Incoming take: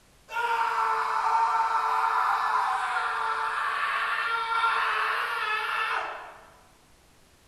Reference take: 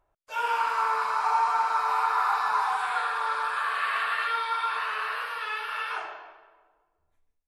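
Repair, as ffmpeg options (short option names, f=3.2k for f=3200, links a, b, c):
-af "agate=range=-21dB:threshold=-50dB,asetnsamples=n=441:p=0,asendcmd='4.55 volume volume -4dB',volume=0dB"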